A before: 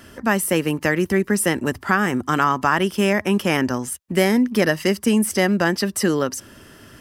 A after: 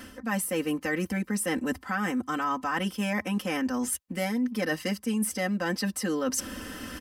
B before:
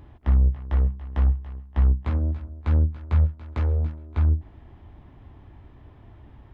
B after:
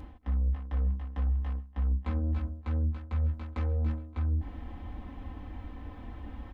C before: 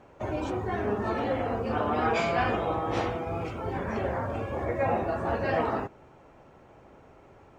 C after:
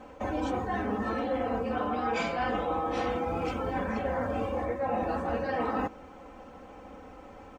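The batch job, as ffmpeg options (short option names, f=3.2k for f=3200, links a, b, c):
-af "aecho=1:1:3.9:0.99,areverse,acompressor=threshold=-31dB:ratio=6,areverse,volume=3.5dB"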